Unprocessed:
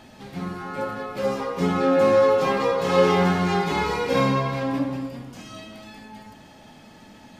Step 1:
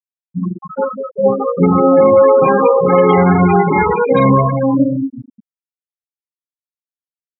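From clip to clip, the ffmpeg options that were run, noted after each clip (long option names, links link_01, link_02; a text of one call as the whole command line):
ffmpeg -i in.wav -af "afftfilt=real='re*gte(hypot(re,im),0.141)':imag='im*gte(hypot(re,im),0.141)':win_size=1024:overlap=0.75,alimiter=level_in=13.5dB:limit=-1dB:release=50:level=0:latency=1,volume=-1dB" out.wav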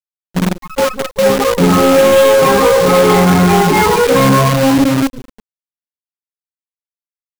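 ffmpeg -i in.wav -af "acontrast=87,acrusher=bits=3:dc=4:mix=0:aa=0.000001,volume=-2.5dB" out.wav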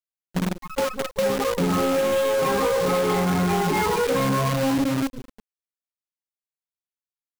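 ffmpeg -i in.wav -af "acompressor=threshold=-14dB:ratio=4,volume=-6.5dB" out.wav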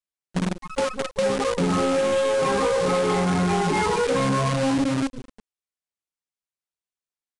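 ffmpeg -i in.wav -af "aresample=22050,aresample=44100" out.wav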